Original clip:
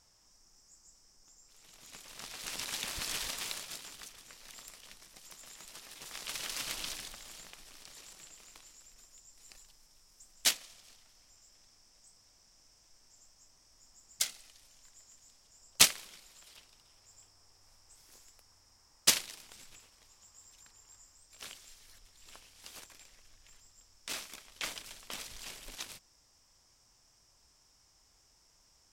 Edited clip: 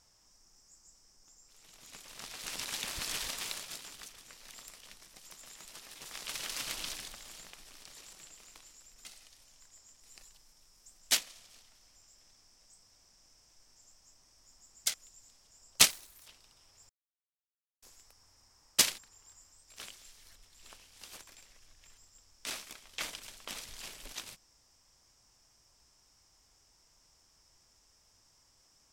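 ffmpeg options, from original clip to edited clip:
-filter_complex "[0:a]asplit=10[s0][s1][s2][s3][s4][s5][s6][s7][s8][s9];[s0]atrim=end=9.052[s10];[s1]atrim=start=14.278:end=15.232[s11];[s2]atrim=start=9.338:end=14.282[s12];[s3]atrim=start=9.048:end=9.342[s13];[s4]atrim=start=15.228:end=15.904[s14];[s5]atrim=start=15.9:end=16.55,asetpts=PTS-STARTPTS,asetrate=78939,aresample=44100[s15];[s6]atrim=start=16.546:end=17.18,asetpts=PTS-STARTPTS,afade=t=out:st=0.63:d=0.004:c=hsin[s16];[s7]atrim=start=17.18:end=18.11,asetpts=PTS-STARTPTS,volume=0[s17];[s8]atrim=start=18.11:end=19.272,asetpts=PTS-STARTPTS,afade=t=in:d=0.004:c=hsin[s18];[s9]atrim=start=20.608[s19];[s10][s11]acrossfade=d=0.004:c1=hsin:c2=hsin[s20];[s20][s12]acrossfade=d=0.004:c1=hsin:c2=hsin[s21];[s21][s13]acrossfade=d=0.004:c1=hsin:c2=hsin[s22];[s22][s14]acrossfade=d=0.004:c1=hsin:c2=hsin[s23];[s23][s15]acrossfade=d=0.004:c1=hsin:c2=hsin[s24];[s16][s17][s18]concat=n=3:v=0:a=1[s25];[s24][s25]acrossfade=d=0.004:c1=hsin:c2=hsin[s26];[s26][s19]acrossfade=d=0.004:c1=hsin:c2=hsin"

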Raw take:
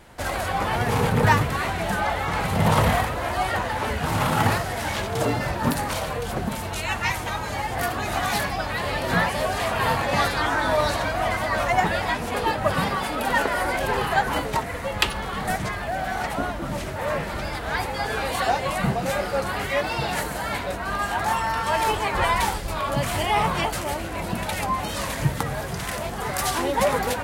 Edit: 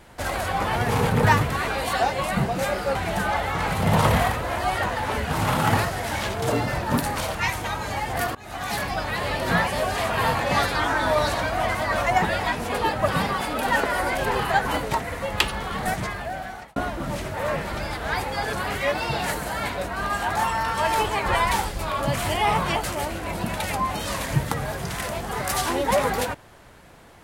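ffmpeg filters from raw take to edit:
-filter_complex "[0:a]asplit=7[s0][s1][s2][s3][s4][s5][s6];[s0]atrim=end=1.682[s7];[s1]atrim=start=18.148:end=19.422[s8];[s2]atrim=start=1.678:end=6.082[s9];[s3]atrim=start=6.968:end=7.97,asetpts=PTS-STARTPTS,afade=t=out:st=0.998:d=0.004:c=hsin:silence=0.0668344[s10];[s4]atrim=start=7.97:end=16.38,asetpts=PTS-STARTPTS,afade=t=in:d=0.58:silence=0.0668344,afade=t=out:st=7.45:d=0.96:c=qsin[s11];[s5]atrim=start=16.38:end=18.152,asetpts=PTS-STARTPTS,afade=t=in:d=0.004:c=hsin[s12];[s6]atrim=start=19.418[s13];[s7][s8]acrossfade=d=0.004:c1=hsin:c2=hsin[s14];[s14][s9]acrossfade=d=0.004:c1=hsin:c2=hsin[s15];[s10][s11][s12]concat=n=3:v=0:a=1[s16];[s15][s16]acrossfade=d=0.004:c1=hsin:c2=hsin[s17];[s17][s13]acrossfade=d=0.004:c1=hsin:c2=hsin"

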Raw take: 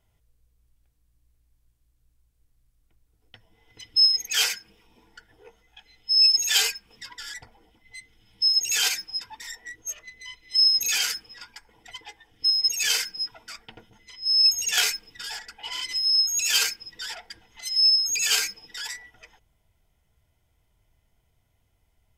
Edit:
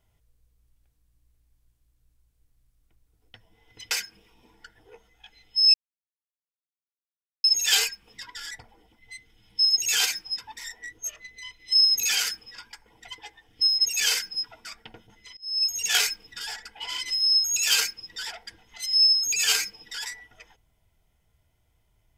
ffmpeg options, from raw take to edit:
-filter_complex "[0:a]asplit=4[s0][s1][s2][s3];[s0]atrim=end=3.912[s4];[s1]atrim=start=4.438:end=6.27,asetpts=PTS-STARTPTS,afade=t=out:st=1.828:d=0.004:c=hsin,apad=pad_dur=1.7[s5];[s2]atrim=start=6.27:end=14.2,asetpts=PTS-STARTPTS,afade=t=in:d=0.004:c=hsin,afade=t=out:st=7.926:d=0.004:c=hsin:silence=0.0668344[s6];[s3]atrim=start=14.2,asetpts=PTS-STARTPTS,afade=t=in:d=0.55:silence=0.0668344[s7];[s5][s6][s7]concat=n=3:v=0:a=1[s8];[s4][s8]acrossfade=d=0.004:c1=hsin:c2=hsin"

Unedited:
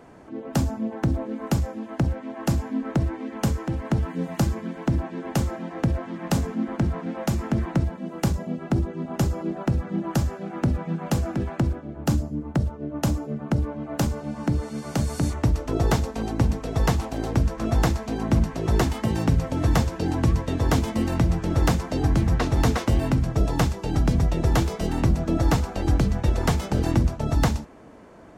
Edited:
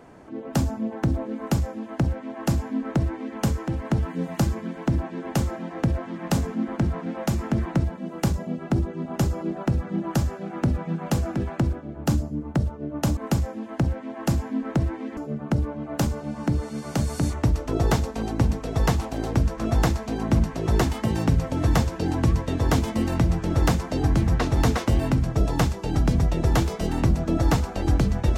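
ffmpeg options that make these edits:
-filter_complex "[0:a]asplit=3[s0][s1][s2];[s0]atrim=end=13.172[s3];[s1]atrim=start=1.368:end=3.372[s4];[s2]atrim=start=13.168[s5];[s3][s4]acrossfade=d=0.004:c1=hsin:c2=hsin[s6];[s6][s5]acrossfade=d=0.004:c1=hsin:c2=hsin"

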